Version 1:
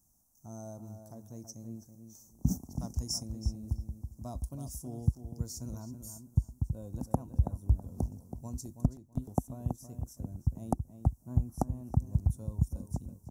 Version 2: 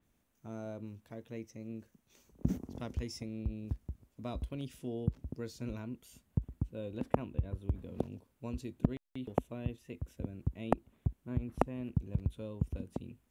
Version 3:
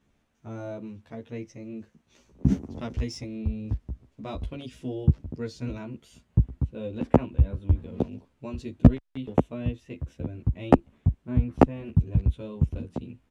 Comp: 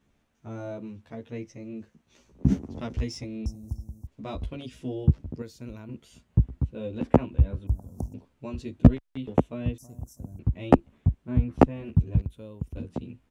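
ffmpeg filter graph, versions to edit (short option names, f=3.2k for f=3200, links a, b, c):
-filter_complex "[0:a]asplit=3[a][b][c];[1:a]asplit=2[d][e];[2:a]asplit=6[f][g][h][i][j][k];[f]atrim=end=3.462[l];[a]atrim=start=3.458:end=4.072[m];[g]atrim=start=4.068:end=5.422[n];[d]atrim=start=5.418:end=5.892[o];[h]atrim=start=5.888:end=7.672[p];[b]atrim=start=7.668:end=8.142[q];[i]atrim=start=8.138:end=9.782[r];[c]atrim=start=9.778:end=10.392[s];[j]atrim=start=10.388:end=12.222[t];[e]atrim=start=12.218:end=12.772[u];[k]atrim=start=12.768[v];[l][m]acrossfade=d=0.004:c1=hsin:c2=hsin[w];[w][n]acrossfade=d=0.004:c1=hsin:c2=hsin[x];[x][o]acrossfade=d=0.004:c1=hsin:c2=hsin[y];[y][p]acrossfade=d=0.004:c1=hsin:c2=hsin[z];[z][q]acrossfade=d=0.004:c1=hsin:c2=hsin[aa];[aa][r]acrossfade=d=0.004:c1=hsin:c2=hsin[ab];[ab][s]acrossfade=d=0.004:c1=hsin:c2=hsin[ac];[ac][t]acrossfade=d=0.004:c1=hsin:c2=hsin[ad];[ad][u]acrossfade=d=0.004:c1=hsin:c2=hsin[ae];[ae][v]acrossfade=d=0.004:c1=hsin:c2=hsin"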